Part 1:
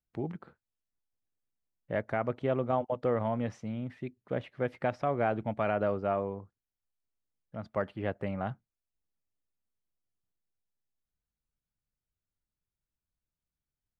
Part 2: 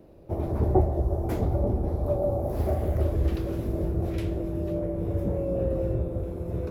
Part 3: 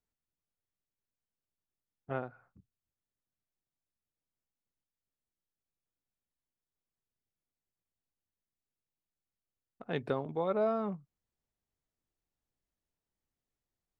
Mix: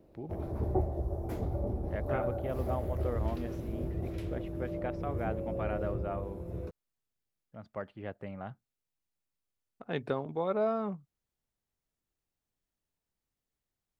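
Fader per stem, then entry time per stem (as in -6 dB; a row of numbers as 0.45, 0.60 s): -7.5, -8.5, +0.5 dB; 0.00, 0.00, 0.00 s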